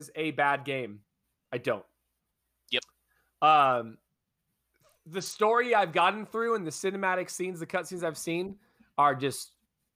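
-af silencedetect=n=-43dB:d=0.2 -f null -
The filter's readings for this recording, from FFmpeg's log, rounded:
silence_start: 0.96
silence_end: 1.53 | silence_duration: 0.56
silence_start: 1.82
silence_end: 2.69 | silence_duration: 0.87
silence_start: 2.83
silence_end: 3.42 | silence_duration: 0.59
silence_start: 3.95
silence_end: 5.07 | silence_duration: 1.13
silence_start: 8.53
silence_end: 8.98 | silence_duration: 0.45
silence_start: 9.46
silence_end: 9.96 | silence_duration: 0.49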